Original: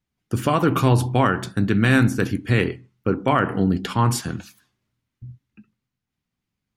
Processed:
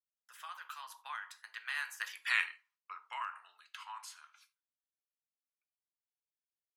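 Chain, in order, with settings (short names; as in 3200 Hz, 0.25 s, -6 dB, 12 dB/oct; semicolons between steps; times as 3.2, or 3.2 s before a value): Doppler pass-by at 2.33, 29 m/s, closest 3 m; gate with hold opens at -55 dBFS; elliptic high-pass 990 Hz, stop band 80 dB; non-linear reverb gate 0.11 s falling, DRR 11.5 dB; three-band squash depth 40%; gain +1 dB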